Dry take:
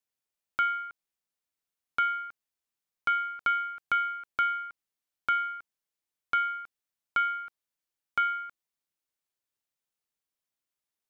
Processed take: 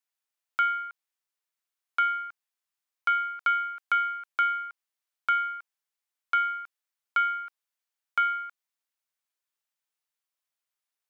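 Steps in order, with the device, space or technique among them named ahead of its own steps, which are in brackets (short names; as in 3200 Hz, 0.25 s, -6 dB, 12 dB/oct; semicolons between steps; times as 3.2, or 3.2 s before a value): filter by subtraction (in parallel: LPF 1200 Hz 12 dB/oct + phase invert)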